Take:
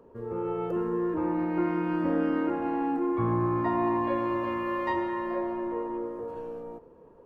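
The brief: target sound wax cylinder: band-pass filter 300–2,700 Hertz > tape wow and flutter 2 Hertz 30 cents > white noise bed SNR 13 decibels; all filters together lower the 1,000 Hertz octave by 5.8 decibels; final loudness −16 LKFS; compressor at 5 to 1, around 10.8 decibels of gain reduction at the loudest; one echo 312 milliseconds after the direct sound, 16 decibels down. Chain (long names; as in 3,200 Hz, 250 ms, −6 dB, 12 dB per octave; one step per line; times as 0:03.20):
parametric band 1,000 Hz −6.5 dB
downward compressor 5 to 1, threshold −36 dBFS
band-pass filter 300–2,700 Hz
single-tap delay 312 ms −16 dB
tape wow and flutter 2 Hz 30 cents
white noise bed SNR 13 dB
level +24.5 dB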